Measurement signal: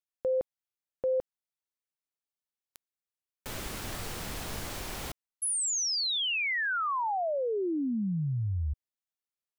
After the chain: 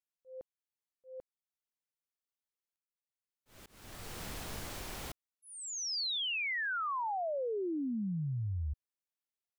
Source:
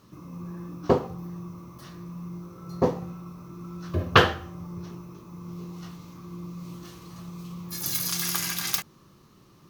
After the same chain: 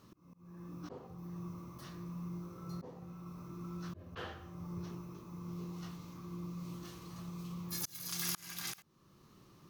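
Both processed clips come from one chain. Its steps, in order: slow attack 573 ms; trim -5 dB

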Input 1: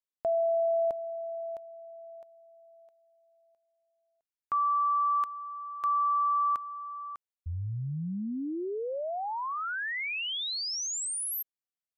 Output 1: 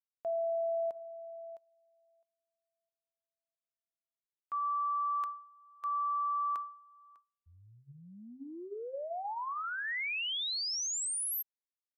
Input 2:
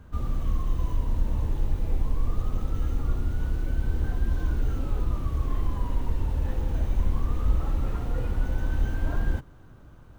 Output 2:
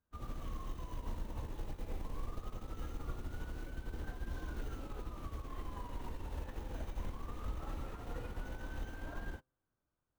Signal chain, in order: bass shelf 230 Hz -11 dB; de-hum 129.1 Hz, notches 13; peak limiter -29.5 dBFS; upward expansion 2.5:1, over -54 dBFS

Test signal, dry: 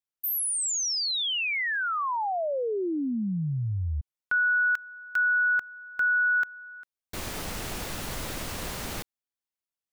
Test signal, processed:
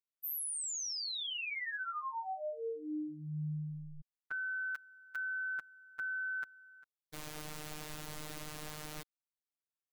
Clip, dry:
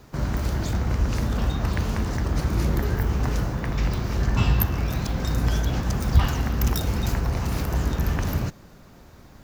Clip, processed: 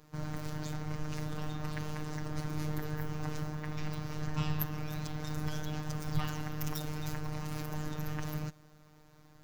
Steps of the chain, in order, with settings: robot voice 152 Hz; trim -8.5 dB

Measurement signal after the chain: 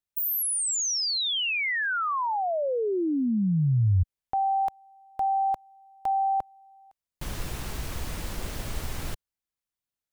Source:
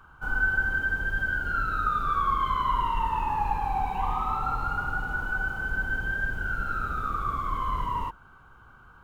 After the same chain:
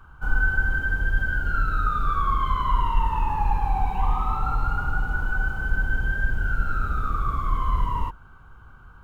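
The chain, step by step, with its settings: bass shelf 130 Hz +11 dB

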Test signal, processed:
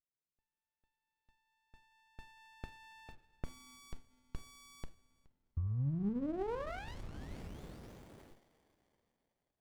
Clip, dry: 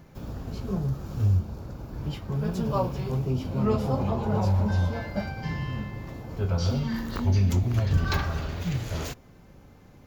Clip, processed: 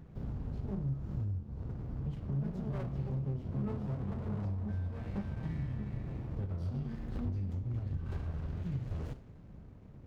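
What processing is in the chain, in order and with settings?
low-pass 2.1 kHz 6 dB/octave; bass shelf 310 Hz +8.5 dB; compression 6:1, threshold -27 dBFS; two-slope reverb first 0.38 s, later 3.8 s, from -21 dB, DRR 7 dB; sliding maximum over 33 samples; trim -7.5 dB

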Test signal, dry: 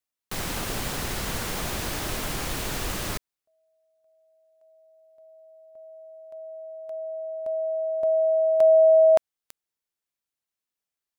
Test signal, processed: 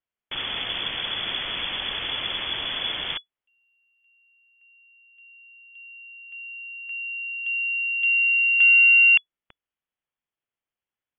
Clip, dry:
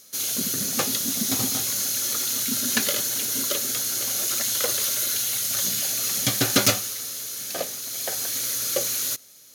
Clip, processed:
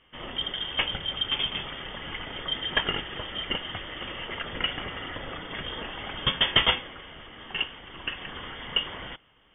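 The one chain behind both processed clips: Chebyshev shaper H 5 -30 dB, 6 -37 dB, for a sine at -4 dBFS; frequency inversion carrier 3.4 kHz

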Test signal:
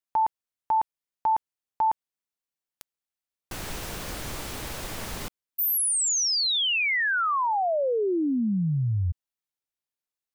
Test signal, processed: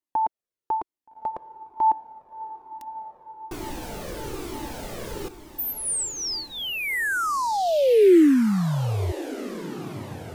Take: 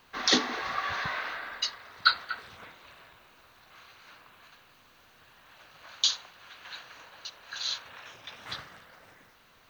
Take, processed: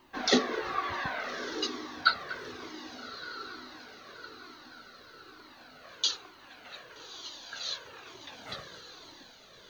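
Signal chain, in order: peaking EQ 350 Hz +15 dB 1.5 oct; echo that smears into a reverb 1251 ms, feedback 49%, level -11.5 dB; Shepard-style flanger falling 1.1 Hz

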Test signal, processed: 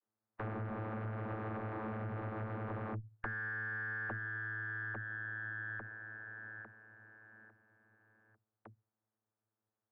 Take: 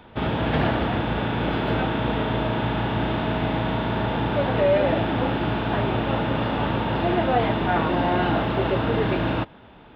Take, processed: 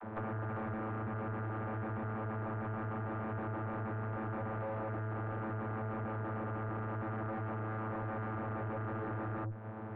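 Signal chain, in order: spectral contrast reduction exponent 0.5; vocoder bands 32, saw 109 Hz; valve stage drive 38 dB, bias 0.5; low-pass 1.6 kHz 24 dB/octave; compression 6:1, threshold -50 dBFS; trim +11.5 dB

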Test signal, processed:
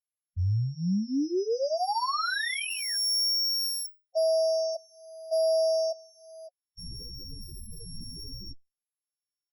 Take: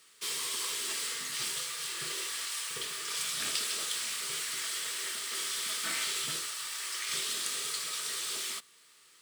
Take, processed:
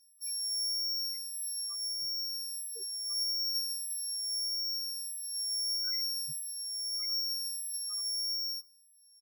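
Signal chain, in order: sorted samples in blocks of 8 samples; loudest bins only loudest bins 8; endless flanger 11.1 ms +0.8 Hz; trim +5.5 dB

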